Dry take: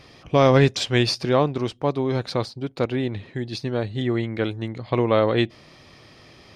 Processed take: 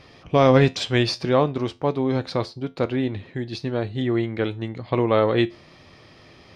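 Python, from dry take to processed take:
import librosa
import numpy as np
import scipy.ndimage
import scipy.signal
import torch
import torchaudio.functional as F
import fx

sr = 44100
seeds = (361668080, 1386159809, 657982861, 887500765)

y = fx.high_shelf(x, sr, hz=7400.0, db=-10.0)
y = fx.comb_fb(y, sr, f0_hz=87.0, decay_s=0.25, harmonics='all', damping=0.0, mix_pct=50)
y = y * librosa.db_to_amplitude(4.0)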